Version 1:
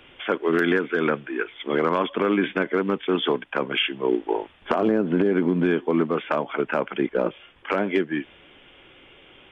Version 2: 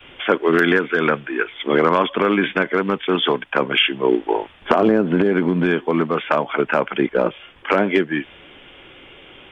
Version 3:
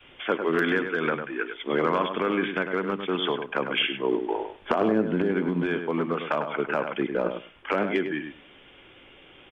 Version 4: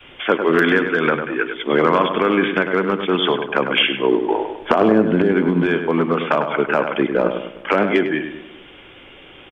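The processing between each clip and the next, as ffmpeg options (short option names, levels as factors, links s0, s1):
-af "adynamicequalizer=threshold=0.02:dfrequency=310:dqfactor=0.84:tfrequency=310:tqfactor=0.84:attack=5:release=100:ratio=0.375:range=3:mode=cutabove:tftype=bell,volume=2.24"
-filter_complex "[0:a]asplit=2[s0][s1];[s1]adelay=101,lowpass=f=2500:p=1,volume=0.447,asplit=2[s2][s3];[s3]adelay=101,lowpass=f=2500:p=1,volume=0.15,asplit=2[s4][s5];[s5]adelay=101,lowpass=f=2500:p=1,volume=0.15[s6];[s0][s2][s4][s6]amix=inputs=4:normalize=0,volume=0.376"
-filter_complex "[0:a]asplit=2[s0][s1];[s1]adelay=202,lowpass=f=1100:p=1,volume=0.168,asplit=2[s2][s3];[s3]adelay=202,lowpass=f=1100:p=1,volume=0.39,asplit=2[s4][s5];[s5]adelay=202,lowpass=f=1100:p=1,volume=0.39[s6];[s0][s2][s4][s6]amix=inputs=4:normalize=0,volume=2.66"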